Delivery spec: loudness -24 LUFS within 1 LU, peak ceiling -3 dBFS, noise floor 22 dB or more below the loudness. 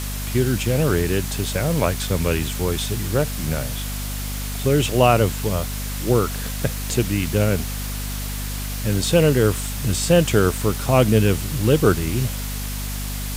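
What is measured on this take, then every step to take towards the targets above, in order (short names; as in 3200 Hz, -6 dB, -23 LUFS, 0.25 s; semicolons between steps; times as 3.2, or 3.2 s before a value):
hum 50 Hz; harmonics up to 250 Hz; hum level -26 dBFS; noise floor -27 dBFS; noise floor target -43 dBFS; loudness -21.0 LUFS; peak -1.5 dBFS; loudness target -24.0 LUFS
-> de-hum 50 Hz, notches 5; noise print and reduce 16 dB; gain -3 dB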